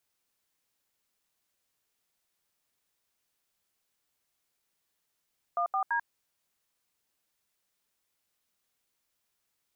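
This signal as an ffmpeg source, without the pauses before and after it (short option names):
-f lavfi -i "aevalsrc='0.0376*clip(min(mod(t,0.168),0.091-mod(t,0.168))/0.002,0,1)*(eq(floor(t/0.168),0)*(sin(2*PI*697*mod(t,0.168))+sin(2*PI*1209*mod(t,0.168)))+eq(floor(t/0.168),1)*(sin(2*PI*770*mod(t,0.168))+sin(2*PI*1209*mod(t,0.168)))+eq(floor(t/0.168),2)*(sin(2*PI*941*mod(t,0.168))+sin(2*PI*1633*mod(t,0.168))))':d=0.504:s=44100"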